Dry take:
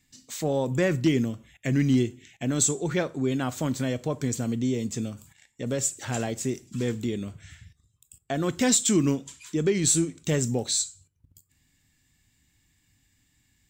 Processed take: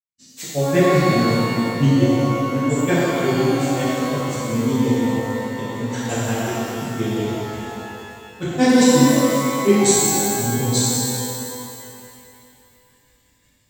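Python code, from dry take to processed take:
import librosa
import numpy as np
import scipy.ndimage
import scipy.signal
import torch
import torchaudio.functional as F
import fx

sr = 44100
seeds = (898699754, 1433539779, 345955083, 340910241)

y = fx.granulator(x, sr, seeds[0], grain_ms=100.0, per_s=5.6, spray_ms=100.0, spread_st=0)
y = fx.hpss(y, sr, part='harmonic', gain_db=8)
y = fx.rev_shimmer(y, sr, seeds[1], rt60_s=2.7, semitones=12, shimmer_db=-8, drr_db=-10.5)
y = F.gain(torch.from_numpy(y), 2.0).numpy()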